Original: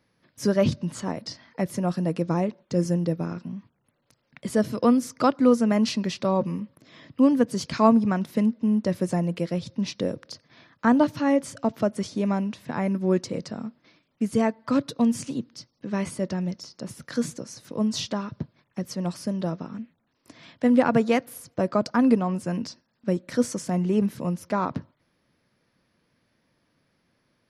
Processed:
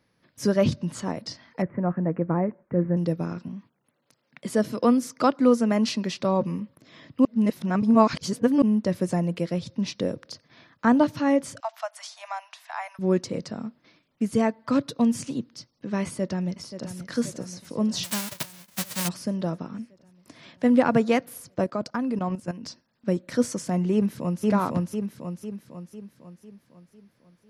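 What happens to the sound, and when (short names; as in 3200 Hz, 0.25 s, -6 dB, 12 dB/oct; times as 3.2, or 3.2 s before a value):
1.62–2.97 steep low-pass 2100 Hz 48 dB/oct
3.48–6.21 HPF 160 Hz
7.25–8.62 reverse
11.6–12.99 steep high-pass 670 Hz 72 dB/oct
16.03–16.93 echo throw 0.53 s, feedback 70%, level -11 dB
18.03–19.07 spectral whitening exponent 0.1
21.64–22.66 level quantiser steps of 13 dB
23.93–24.45 echo throw 0.5 s, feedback 50%, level -0.5 dB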